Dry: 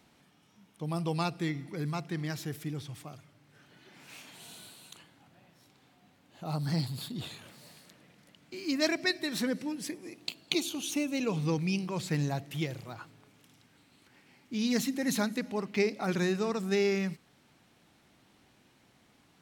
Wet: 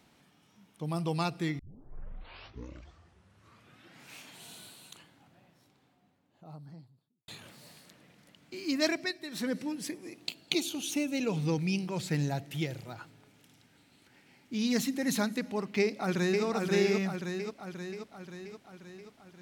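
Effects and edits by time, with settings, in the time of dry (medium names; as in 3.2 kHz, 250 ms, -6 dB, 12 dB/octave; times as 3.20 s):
1.59 s: tape start 2.55 s
4.85–7.28 s: studio fade out
8.89–9.55 s: dip -8 dB, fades 0.26 s
10.26–14.53 s: band-stop 1.1 kHz, Q 7.5
15.80–16.44 s: echo throw 530 ms, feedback 60%, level -2.5 dB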